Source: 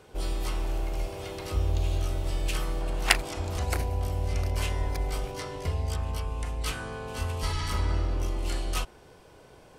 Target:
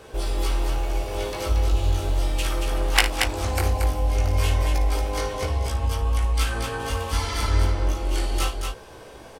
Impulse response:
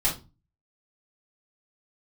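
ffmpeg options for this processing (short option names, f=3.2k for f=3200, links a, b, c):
-filter_complex "[0:a]equalizer=f=160:t=o:w=0.5:g=-8,asplit=2[a][b];[b]acompressor=threshold=-38dB:ratio=6,volume=2dB[c];[a][c]amix=inputs=2:normalize=0,flanger=delay=16.5:depth=3.9:speed=1.2,aecho=1:1:58.31|239.1:0.282|0.562,asetrate=45938,aresample=44100,volume=5dB"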